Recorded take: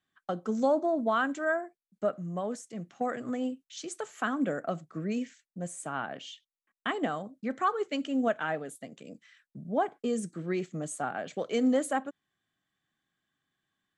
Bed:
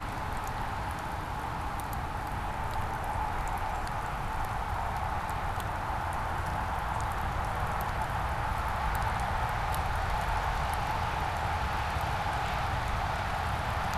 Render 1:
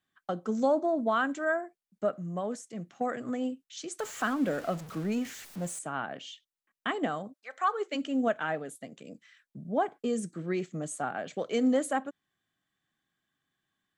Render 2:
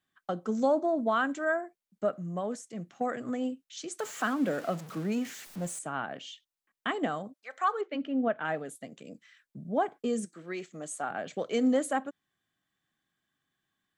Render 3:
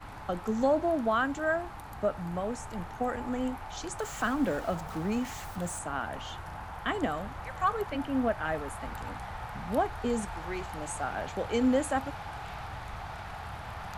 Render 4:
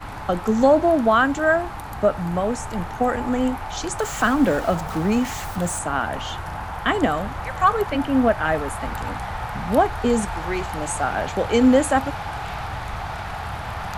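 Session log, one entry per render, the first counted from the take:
3.99–5.79 s: jump at every zero crossing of -40 dBFS; 7.32–7.94 s: high-pass 1 kHz -> 280 Hz 24 dB/octave
3.90–5.47 s: high-pass 130 Hz 24 dB/octave; 7.81–8.45 s: distance through air 330 m; 10.24–11.09 s: high-pass 890 Hz -> 400 Hz 6 dB/octave
add bed -9 dB
trim +10.5 dB

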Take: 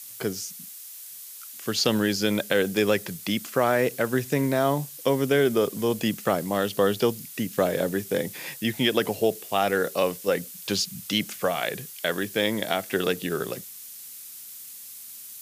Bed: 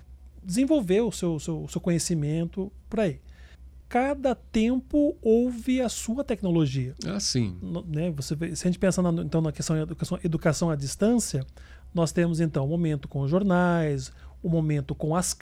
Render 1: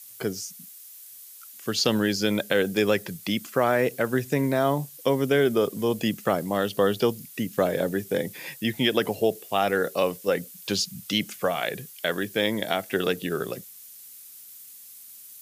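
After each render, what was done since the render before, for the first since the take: noise reduction 6 dB, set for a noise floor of -42 dBFS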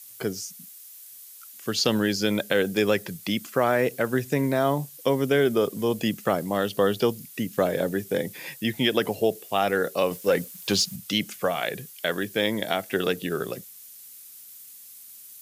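10.11–10.96 s: waveshaping leveller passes 1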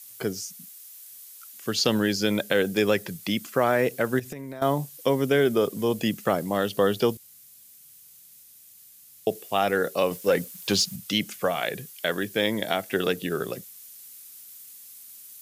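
4.19–4.62 s: compression 20:1, threshold -32 dBFS; 7.17–9.27 s: room tone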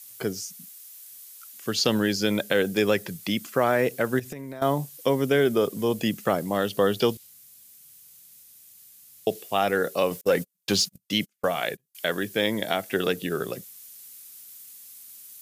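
6.97–9.44 s: dynamic bell 3.6 kHz, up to +5 dB, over -49 dBFS, Q 0.99; 10.21–11.95 s: gate -33 dBFS, range -38 dB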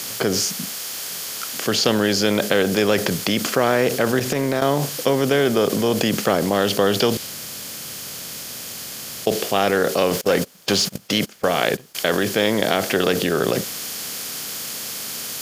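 spectral levelling over time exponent 0.6; in parallel at -2 dB: compressor with a negative ratio -29 dBFS, ratio -1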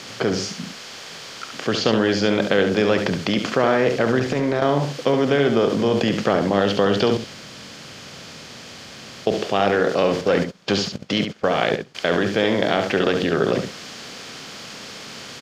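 distance through air 150 m; delay 70 ms -7 dB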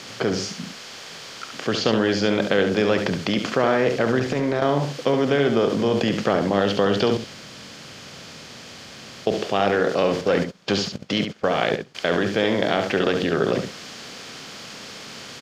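trim -1.5 dB

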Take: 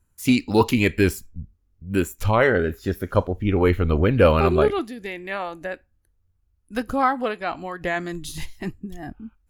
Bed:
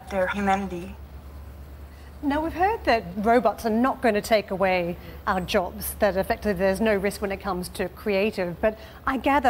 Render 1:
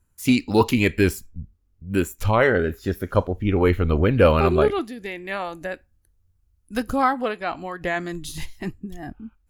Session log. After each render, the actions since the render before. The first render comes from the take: 5.28–7.14 s: tone controls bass +3 dB, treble +5 dB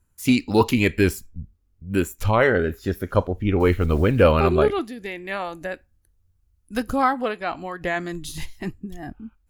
3.60–4.23 s: block-companded coder 7-bit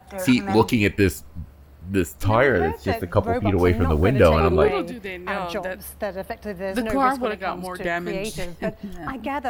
add bed -6.5 dB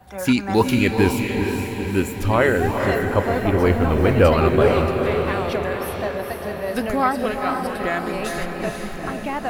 echo that smears into a reverb 461 ms, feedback 58%, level -4.5 dB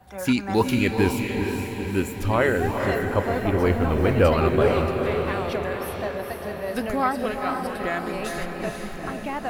trim -3.5 dB

